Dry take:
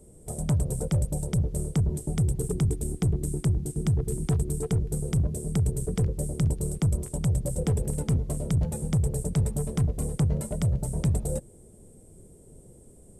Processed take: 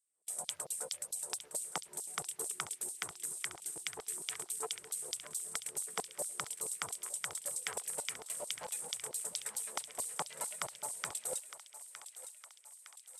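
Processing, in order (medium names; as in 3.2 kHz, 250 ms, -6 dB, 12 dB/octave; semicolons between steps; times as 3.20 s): gate -45 dBFS, range -25 dB; LFO high-pass saw down 4.5 Hz 780–4900 Hz; thinning echo 911 ms, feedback 62%, high-pass 910 Hz, level -11 dB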